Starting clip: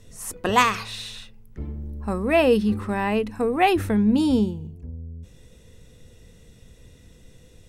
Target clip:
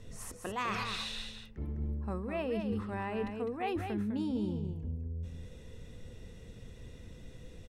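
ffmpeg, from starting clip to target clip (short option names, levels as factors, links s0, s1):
-af "highshelf=f=5800:g=-11.5,areverse,acompressor=threshold=0.02:ratio=6,areverse,aecho=1:1:204:0.473"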